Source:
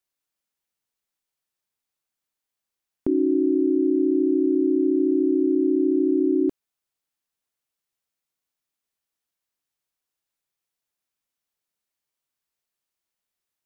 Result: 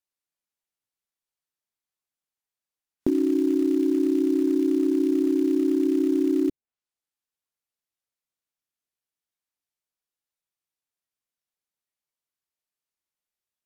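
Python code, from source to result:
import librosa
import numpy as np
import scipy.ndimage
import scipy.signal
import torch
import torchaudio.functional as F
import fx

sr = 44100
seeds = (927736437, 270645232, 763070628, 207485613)

p1 = fx.env_lowpass_down(x, sr, base_hz=300.0, full_db=-21.0)
p2 = fx.noise_reduce_blind(p1, sr, reduce_db=8)
p3 = fx.quant_float(p2, sr, bits=2)
p4 = p2 + (p3 * librosa.db_to_amplitude(-5.0))
y = p4 * librosa.db_to_amplitude(-2.0)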